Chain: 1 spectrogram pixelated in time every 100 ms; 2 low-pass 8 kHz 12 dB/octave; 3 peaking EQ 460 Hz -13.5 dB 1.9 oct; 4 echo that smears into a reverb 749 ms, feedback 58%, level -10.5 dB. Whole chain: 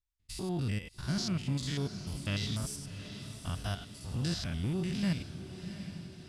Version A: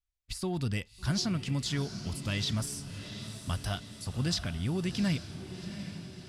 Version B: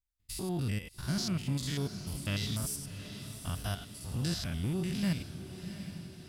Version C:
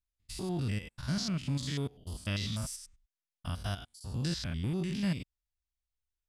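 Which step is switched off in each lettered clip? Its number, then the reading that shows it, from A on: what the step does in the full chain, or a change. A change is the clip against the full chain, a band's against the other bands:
1, 125 Hz band -2.0 dB; 2, 8 kHz band +3.5 dB; 4, echo-to-direct -8.5 dB to none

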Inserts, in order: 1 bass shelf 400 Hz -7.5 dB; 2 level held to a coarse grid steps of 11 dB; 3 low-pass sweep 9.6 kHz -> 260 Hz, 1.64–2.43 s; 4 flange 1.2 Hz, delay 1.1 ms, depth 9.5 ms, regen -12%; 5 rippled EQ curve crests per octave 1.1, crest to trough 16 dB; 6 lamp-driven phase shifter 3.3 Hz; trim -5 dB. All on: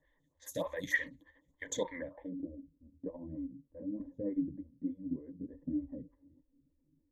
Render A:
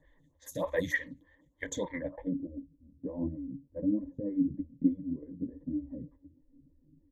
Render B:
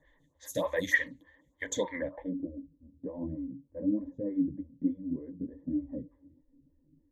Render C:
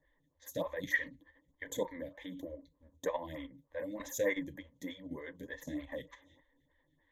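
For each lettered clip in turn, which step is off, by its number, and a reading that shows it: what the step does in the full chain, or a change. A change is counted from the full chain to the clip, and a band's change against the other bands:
1, 8 kHz band -4.5 dB; 2, 8 kHz band -2.0 dB; 3, 250 Hz band -6.0 dB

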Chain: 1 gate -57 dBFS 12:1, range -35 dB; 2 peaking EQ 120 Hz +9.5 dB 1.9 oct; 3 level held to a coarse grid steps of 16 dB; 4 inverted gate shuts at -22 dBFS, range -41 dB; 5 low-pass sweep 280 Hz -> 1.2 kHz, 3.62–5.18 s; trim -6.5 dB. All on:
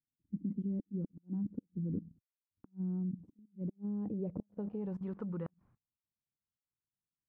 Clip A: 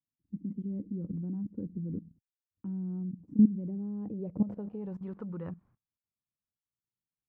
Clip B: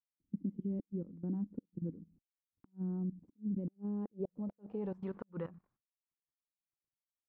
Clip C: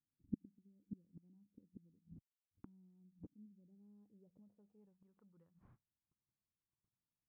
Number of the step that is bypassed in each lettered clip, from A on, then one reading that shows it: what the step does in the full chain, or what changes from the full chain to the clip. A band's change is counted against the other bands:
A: 4, momentary loudness spread change +7 LU; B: 2, 125 Hz band -3.5 dB; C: 3, crest factor change +18.0 dB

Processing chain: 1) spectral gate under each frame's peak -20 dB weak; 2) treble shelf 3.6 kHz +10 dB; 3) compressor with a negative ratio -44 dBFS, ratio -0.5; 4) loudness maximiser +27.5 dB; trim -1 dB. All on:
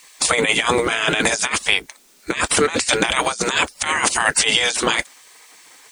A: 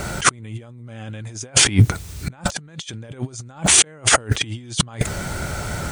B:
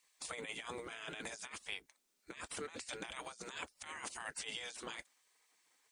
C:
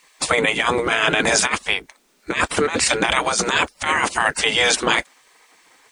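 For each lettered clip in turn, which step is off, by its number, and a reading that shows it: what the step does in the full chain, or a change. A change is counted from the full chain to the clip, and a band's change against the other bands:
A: 1, 125 Hz band +17.5 dB; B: 4, crest factor change +4.0 dB; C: 2, 8 kHz band -2.5 dB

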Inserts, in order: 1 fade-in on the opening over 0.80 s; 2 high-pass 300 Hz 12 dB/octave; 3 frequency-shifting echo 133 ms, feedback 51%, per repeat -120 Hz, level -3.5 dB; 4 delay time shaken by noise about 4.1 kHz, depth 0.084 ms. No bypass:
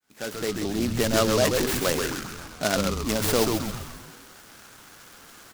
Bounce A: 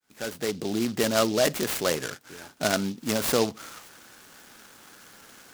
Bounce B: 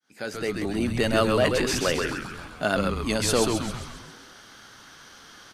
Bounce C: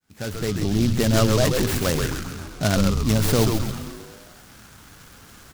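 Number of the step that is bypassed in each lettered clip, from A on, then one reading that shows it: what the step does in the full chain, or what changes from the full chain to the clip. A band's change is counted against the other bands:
3, momentary loudness spread change +5 LU; 4, 8 kHz band -2.5 dB; 2, 125 Hz band +10.0 dB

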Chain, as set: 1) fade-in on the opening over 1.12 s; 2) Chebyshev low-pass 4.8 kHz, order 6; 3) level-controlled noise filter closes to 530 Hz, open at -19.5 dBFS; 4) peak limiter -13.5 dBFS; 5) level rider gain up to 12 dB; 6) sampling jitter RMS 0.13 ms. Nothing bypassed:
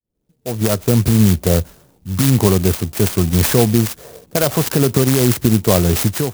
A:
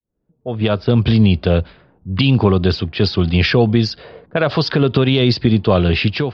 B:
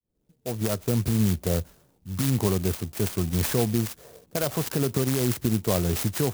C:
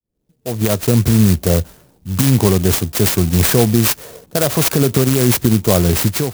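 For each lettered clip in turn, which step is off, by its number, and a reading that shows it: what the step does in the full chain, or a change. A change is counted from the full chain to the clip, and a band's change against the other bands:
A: 6, 2 kHz band +4.0 dB; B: 5, loudness change -10.5 LU; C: 2, 8 kHz band +1.5 dB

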